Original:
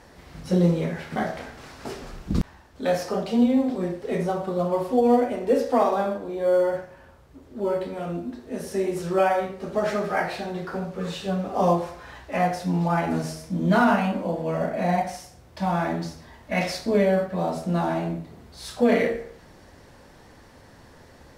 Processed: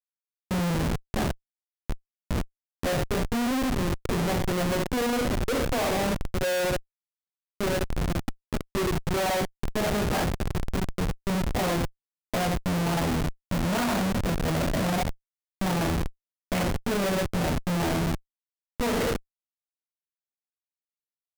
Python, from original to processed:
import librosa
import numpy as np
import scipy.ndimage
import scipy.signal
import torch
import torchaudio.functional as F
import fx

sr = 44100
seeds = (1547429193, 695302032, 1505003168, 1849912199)

y = fx.env_lowpass(x, sr, base_hz=850.0, full_db=-18.0)
y = fx.schmitt(y, sr, flips_db=-25.5)